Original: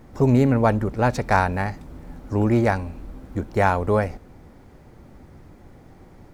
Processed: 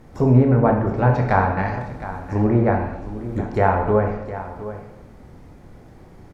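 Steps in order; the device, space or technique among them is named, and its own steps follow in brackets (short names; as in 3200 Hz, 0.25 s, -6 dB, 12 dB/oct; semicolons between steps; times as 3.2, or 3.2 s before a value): treble ducked by the level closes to 1500 Hz, closed at -15.5 dBFS; echo 0.714 s -13.5 dB; bathroom (reverb RT60 0.90 s, pre-delay 18 ms, DRR 2.5 dB)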